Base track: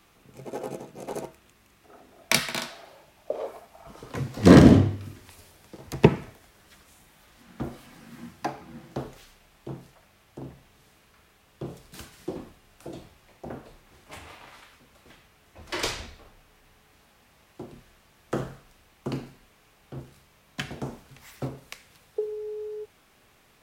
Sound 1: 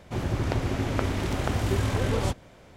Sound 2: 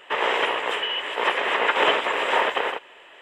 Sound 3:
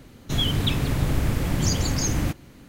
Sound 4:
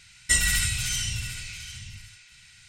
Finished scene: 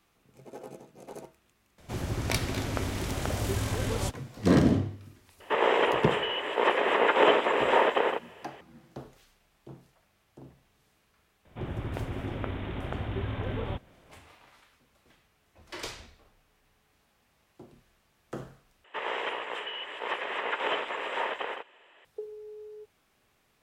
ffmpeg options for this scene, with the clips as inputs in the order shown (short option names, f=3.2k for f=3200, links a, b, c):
-filter_complex "[1:a]asplit=2[a][b];[2:a]asplit=2[c][d];[0:a]volume=-9.5dB[e];[a]aemphasis=mode=production:type=cd[f];[c]equalizer=f=260:w=0.32:g=11.5[g];[b]aresample=8000,aresample=44100[h];[d]highshelf=f=5.1k:g=-5[i];[e]asplit=2[j][k];[j]atrim=end=18.844[l];[i]atrim=end=3.21,asetpts=PTS-STARTPTS,volume=-10dB[m];[k]atrim=start=22.046[n];[f]atrim=end=2.76,asetpts=PTS-STARTPTS,volume=-4.5dB,afade=t=in:d=0.004:c=hsin,afade=t=out:st=2.756:d=0.004:c=hsin,adelay=1780[o];[g]atrim=end=3.21,asetpts=PTS-STARTPTS,volume=-7.5dB,afade=t=in:d=0.004:c=hsin,afade=t=out:st=3.206:d=0.004:c=hsin,adelay=5400[p];[h]atrim=end=2.76,asetpts=PTS-STARTPTS,volume=-7.5dB,afade=t=in:d=0.004:c=hsin,afade=t=out:st=2.756:d=0.004:c=hsin,adelay=11450[q];[l][m]acrossfade=d=0.004:c1=hsin:c2=hsin[r];[r][n]acrossfade=d=0.004:c1=hsin:c2=hsin[s];[s][o][p][q]amix=inputs=4:normalize=0"